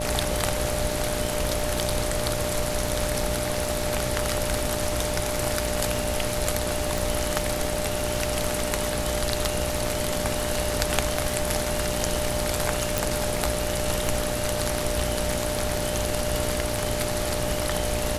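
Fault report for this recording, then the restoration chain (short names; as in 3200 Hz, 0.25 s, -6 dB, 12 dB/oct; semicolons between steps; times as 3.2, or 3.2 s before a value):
buzz 60 Hz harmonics 15 -32 dBFS
crackle 52/s -32 dBFS
tone 600 Hz -31 dBFS
6.98 pop
12.98 pop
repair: de-click; de-hum 60 Hz, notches 15; notch 600 Hz, Q 30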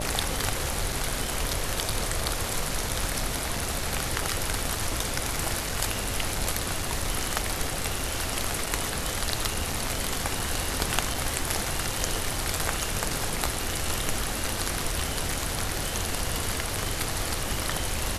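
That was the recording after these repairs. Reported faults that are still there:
none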